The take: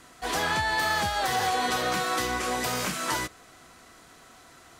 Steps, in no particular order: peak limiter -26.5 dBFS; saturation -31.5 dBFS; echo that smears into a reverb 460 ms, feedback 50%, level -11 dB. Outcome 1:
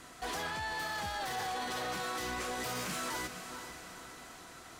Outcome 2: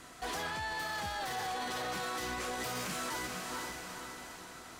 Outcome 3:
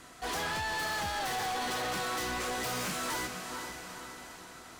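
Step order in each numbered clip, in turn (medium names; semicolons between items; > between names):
peak limiter > echo that smears into a reverb > saturation; echo that smears into a reverb > peak limiter > saturation; echo that smears into a reverb > saturation > peak limiter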